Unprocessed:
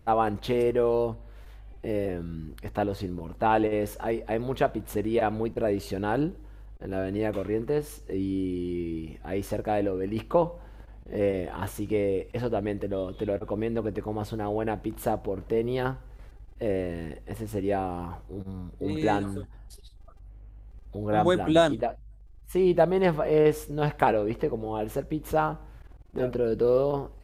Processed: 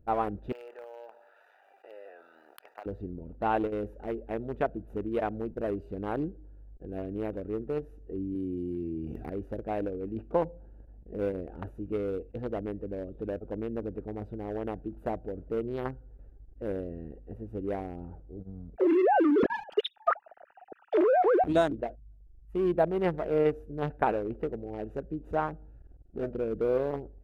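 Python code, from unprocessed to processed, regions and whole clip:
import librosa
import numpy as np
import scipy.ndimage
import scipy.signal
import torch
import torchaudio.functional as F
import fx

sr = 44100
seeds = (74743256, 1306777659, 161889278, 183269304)

y = fx.chain(x, sr, fx.law_mismatch(coded='A'),
    fx.highpass(hz=870.0, slope=24),
    fx.env_flatten(amount_pct=70), at=(0.52, 2.86))
y = fx.chain(y, sr, fx.highpass(hz=67.0, slope=24),
    fx.high_shelf(hz=4000.0, db=11.0),
    fx.env_flatten(amount_pct=70), at=(8.35, 9.3))
y = fx.chain(y, sr, fx.sine_speech(),
    fx.env_lowpass_down(base_hz=1600.0, full_db=-21.0),
    fx.env_flatten(amount_pct=100), at=(18.76, 21.44))
y = fx.chain(y, sr, fx.env_lowpass_down(base_hz=2700.0, full_db=-22.5),
    fx.high_shelf(hz=4900.0, db=12.0), at=(24.39, 26.62))
y = fx.wiener(y, sr, points=41)
y = fx.graphic_eq(y, sr, hz=(125, 4000, 8000), db=(-4, -5, -5))
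y = y * 10.0 ** (-3.5 / 20.0)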